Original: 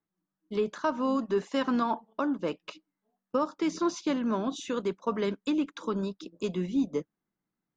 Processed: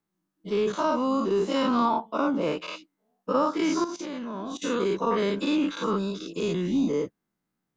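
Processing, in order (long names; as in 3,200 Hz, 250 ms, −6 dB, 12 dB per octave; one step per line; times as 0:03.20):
every bin's largest magnitude spread in time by 120 ms
0:00.72–0:02.47: parametric band 1,700 Hz −11.5 dB 0.25 octaves
0:03.84–0:04.62: output level in coarse steps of 17 dB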